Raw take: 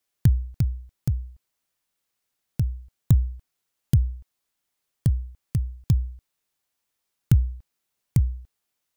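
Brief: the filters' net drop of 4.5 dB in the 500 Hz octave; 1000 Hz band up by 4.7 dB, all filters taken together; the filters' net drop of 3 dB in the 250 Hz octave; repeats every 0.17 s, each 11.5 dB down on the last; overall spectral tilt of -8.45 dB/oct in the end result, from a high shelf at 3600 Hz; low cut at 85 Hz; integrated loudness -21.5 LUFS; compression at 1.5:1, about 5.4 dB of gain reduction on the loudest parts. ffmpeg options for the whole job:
-af "highpass=85,equalizer=f=250:t=o:g=-5.5,equalizer=f=500:t=o:g=-5.5,equalizer=f=1k:t=o:g=8,highshelf=f=3.6k:g=-3,acompressor=threshold=-30dB:ratio=1.5,aecho=1:1:170|340|510:0.266|0.0718|0.0194,volume=12.5dB"

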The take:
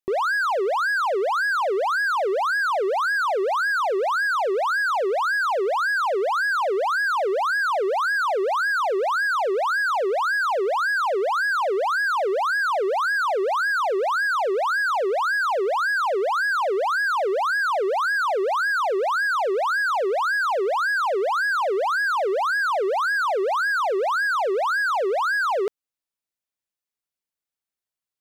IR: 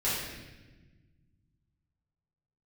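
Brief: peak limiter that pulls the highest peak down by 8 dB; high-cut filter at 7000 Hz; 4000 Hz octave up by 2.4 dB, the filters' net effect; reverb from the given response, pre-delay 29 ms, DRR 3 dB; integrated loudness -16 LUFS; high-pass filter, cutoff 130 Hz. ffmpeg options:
-filter_complex "[0:a]highpass=130,lowpass=7k,equalizer=f=4k:t=o:g=3.5,alimiter=level_in=1.5dB:limit=-24dB:level=0:latency=1,volume=-1.5dB,asplit=2[a][b];[1:a]atrim=start_sample=2205,adelay=29[c];[b][c]afir=irnorm=-1:irlink=0,volume=-12.5dB[d];[a][d]amix=inputs=2:normalize=0,volume=11.5dB"

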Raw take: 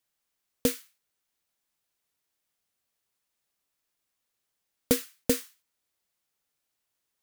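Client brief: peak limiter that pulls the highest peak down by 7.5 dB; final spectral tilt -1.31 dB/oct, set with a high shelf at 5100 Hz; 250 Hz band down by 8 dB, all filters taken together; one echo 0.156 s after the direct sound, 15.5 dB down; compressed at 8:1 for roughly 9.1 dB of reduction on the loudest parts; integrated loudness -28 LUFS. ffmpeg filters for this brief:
-af "equalizer=f=250:t=o:g=-8.5,highshelf=f=5.1k:g=7.5,acompressor=threshold=-28dB:ratio=8,alimiter=limit=-15.5dB:level=0:latency=1,aecho=1:1:156:0.168,volume=11dB"

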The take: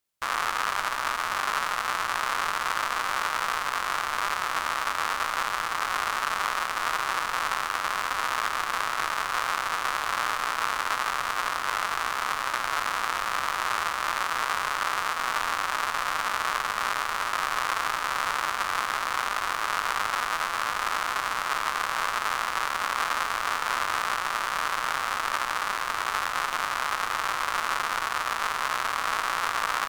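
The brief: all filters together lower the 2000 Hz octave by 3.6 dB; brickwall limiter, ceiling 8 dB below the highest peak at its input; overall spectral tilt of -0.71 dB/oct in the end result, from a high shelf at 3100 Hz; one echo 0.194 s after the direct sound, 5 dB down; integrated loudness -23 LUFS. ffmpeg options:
-af "equalizer=f=2k:t=o:g=-7.5,highshelf=f=3.1k:g=7.5,alimiter=limit=-14dB:level=0:latency=1,aecho=1:1:194:0.562,volume=8dB"

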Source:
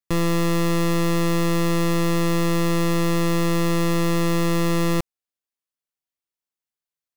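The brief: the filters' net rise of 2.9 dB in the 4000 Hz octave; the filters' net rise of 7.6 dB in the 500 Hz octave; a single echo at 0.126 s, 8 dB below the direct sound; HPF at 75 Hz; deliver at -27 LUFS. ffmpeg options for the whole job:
-af "highpass=75,equalizer=f=500:t=o:g=9,equalizer=f=4k:t=o:g=3.5,aecho=1:1:126:0.398,volume=-9dB"

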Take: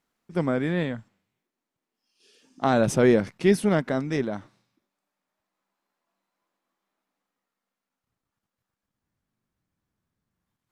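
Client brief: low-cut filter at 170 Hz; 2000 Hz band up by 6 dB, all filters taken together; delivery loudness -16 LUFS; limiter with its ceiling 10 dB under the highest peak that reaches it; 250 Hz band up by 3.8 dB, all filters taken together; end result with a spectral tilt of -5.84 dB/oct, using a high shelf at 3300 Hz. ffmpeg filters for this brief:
-af "highpass=170,equalizer=f=250:t=o:g=6,equalizer=f=2k:t=o:g=8.5,highshelf=f=3.3k:g=-4,volume=10dB,alimiter=limit=-4dB:level=0:latency=1"

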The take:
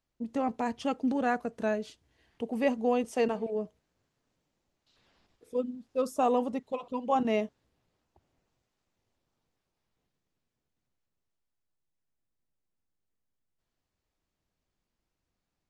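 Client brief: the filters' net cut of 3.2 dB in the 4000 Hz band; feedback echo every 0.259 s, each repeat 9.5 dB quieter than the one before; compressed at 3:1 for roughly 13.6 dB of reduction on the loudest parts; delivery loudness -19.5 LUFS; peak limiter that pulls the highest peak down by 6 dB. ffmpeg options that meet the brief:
-af "equalizer=f=4k:t=o:g=-5,acompressor=threshold=-41dB:ratio=3,alimiter=level_in=10.5dB:limit=-24dB:level=0:latency=1,volume=-10.5dB,aecho=1:1:259|518|777|1036:0.335|0.111|0.0365|0.012,volume=25.5dB"

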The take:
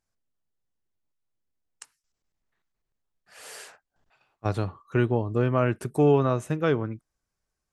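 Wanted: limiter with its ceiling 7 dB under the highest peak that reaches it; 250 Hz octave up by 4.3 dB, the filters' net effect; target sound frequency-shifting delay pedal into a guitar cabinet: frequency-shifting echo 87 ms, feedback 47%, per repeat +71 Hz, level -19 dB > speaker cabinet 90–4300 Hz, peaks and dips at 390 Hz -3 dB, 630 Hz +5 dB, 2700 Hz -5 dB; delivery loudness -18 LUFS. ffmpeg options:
-filter_complex "[0:a]equalizer=f=250:t=o:g=6,alimiter=limit=-14dB:level=0:latency=1,asplit=5[a][b][c][d][e];[b]adelay=87,afreqshift=71,volume=-19dB[f];[c]adelay=174,afreqshift=142,volume=-25.6dB[g];[d]adelay=261,afreqshift=213,volume=-32.1dB[h];[e]adelay=348,afreqshift=284,volume=-38.7dB[i];[a][f][g][h][i]amix=inputs=5:normalize=0,highpass=90,equalizer=f=390:t=q:w=4:g=-3,equalizer=f=630:t=q:w=4:g=5,equalizer=f=2.7k:t=q:w=4:g=-5,lowpass=f=4.3k:w=0.5412,lowpass=f=4.3k:w=1.3066,volume=9dB"

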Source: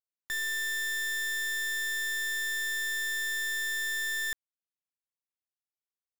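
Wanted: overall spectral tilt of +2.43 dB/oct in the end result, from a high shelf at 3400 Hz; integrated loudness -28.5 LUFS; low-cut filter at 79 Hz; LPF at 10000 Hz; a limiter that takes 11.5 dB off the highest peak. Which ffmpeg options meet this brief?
-af "highpass=79,lowpass=10k,highshelf=f=3.4k:g=7,volume=11dB,alimiter=limit=-24dB:level=0:latency=1"

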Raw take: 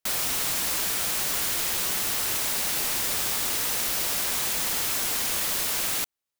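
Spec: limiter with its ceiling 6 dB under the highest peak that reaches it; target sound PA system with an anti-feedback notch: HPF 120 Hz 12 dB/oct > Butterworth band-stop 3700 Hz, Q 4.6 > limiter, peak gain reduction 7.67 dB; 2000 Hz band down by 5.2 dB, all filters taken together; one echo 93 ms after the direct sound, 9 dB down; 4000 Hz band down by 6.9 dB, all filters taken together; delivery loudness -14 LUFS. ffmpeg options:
-af "equalizer=f=2k:t=o:g=-5,equalizer=f=4k:t=o:g=-6,alimiter=limit=-20.5dB:level=0:latency=1,highpass=120,asuperstop=centerf=3700:order=8:qfactor=4.6,aecho=1:1:93:0.355,volume=18.5dB,alimiter=limit=-7.5dB:level=0:latency=1"

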